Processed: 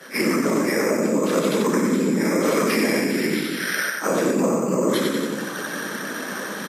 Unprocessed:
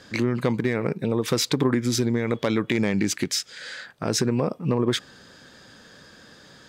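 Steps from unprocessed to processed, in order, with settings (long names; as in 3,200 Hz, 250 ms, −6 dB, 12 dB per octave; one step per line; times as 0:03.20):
low-pass filter 1,100 Hz 6 dB per octave
parametric band 290 Hz −10 dB 2.9 octaves
rectangular room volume 75 cubic metres, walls mixed, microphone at 3.5 metres
reversed playback
upward compression, threshold −19 dBFS
reversed playback
random phases in short frames
notch filter 720 Hz, Q 15
on a send: repeating echo 91 ms, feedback 53%, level −5 dB
on the sum: bad sample-rate conversion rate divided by 6×, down filtered, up hold
brickwall limiter −13 dBFS, peak gain reduction 11.5 dB
Butterworth high-pass 190 Hz 36 dB per octave
level +2.5 dB
Ogg Vorbis 32 kbit/s 48,000 Hz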